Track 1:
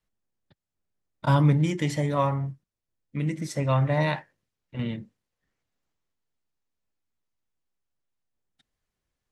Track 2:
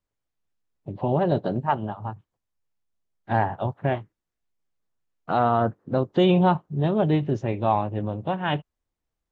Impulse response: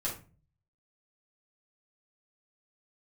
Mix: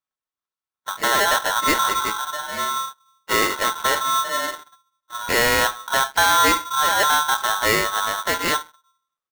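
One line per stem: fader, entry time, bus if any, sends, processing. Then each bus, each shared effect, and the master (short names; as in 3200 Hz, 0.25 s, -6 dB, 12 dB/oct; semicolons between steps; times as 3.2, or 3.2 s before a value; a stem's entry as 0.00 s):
-8.5 dB, 0.35 s, send -7.5 dB, Chebyshev low-pass 920 Hz, order 5; auto duck -19 dB, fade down 0.50 s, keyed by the second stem
-3.0 dB, 0.00 s, send -17.5 dB, dry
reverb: on, RT60 0.35 s, pre-delay 5 ms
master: HPF 58 Hz 12 dB/oct; sample leveller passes 2; polarity switched at an audio rate 1200 Hz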